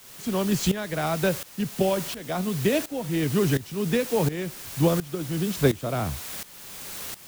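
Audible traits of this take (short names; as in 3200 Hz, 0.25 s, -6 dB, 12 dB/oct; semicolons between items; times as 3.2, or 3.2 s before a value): a quantiser's noise floor 6-bit, dither triangular; tremolo saw up 1.4 Hz, depth 85%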